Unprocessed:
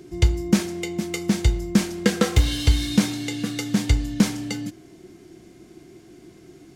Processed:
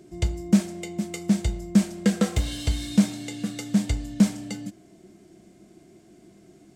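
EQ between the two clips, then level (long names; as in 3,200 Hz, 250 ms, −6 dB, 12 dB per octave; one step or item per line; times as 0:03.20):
thirty-one-band graphic EQ 200 Hz +10 dB, 630 Hz +10 dB, 8,000 Hz +7 dB
−7.5 dB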